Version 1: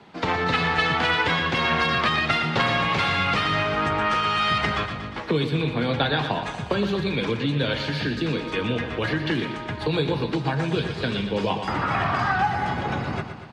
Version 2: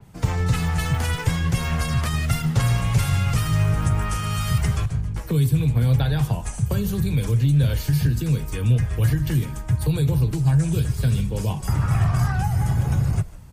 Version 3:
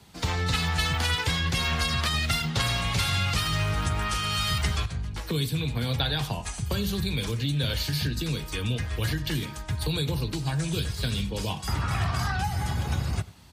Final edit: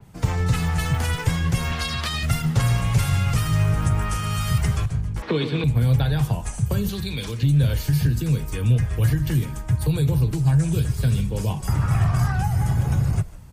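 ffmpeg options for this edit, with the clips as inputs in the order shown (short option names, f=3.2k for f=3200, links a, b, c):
-filter_complex "[2:a]asplit=2[a][b];[1:a]asplit=4[c][d][e][f];[c]atrim=end=1.722[g];[a]atrim=start=1.718:end=2.232[h];[d]atrim=start=2.228:end=5.222[i];[0:a]atrim=start=5.218:end=5.642[j];[e]atrim=start=5.638:end=6.892[k];[b]atrim=start=6.888:end=7.432[l];[f]atrim=start=7.428[m];[g][h]acrossfade=d=0.004:c1=hsin:c2=hsin[n];[n][i]acrossfade=d=0.004:c1=hsin:c2=hsin[o];[o][j]acrossfade=d=0.004:c1=hsin:c2=hsin[p];[p][k]acrossfade=d=0.004:c1=hsin:c2=hsin[q];[q][l]acrossfade=d=0.004:c1=hsin:c2=hsin[r];[r][m]acrossfade=d=0.004:c1=hsin:c2=hsin"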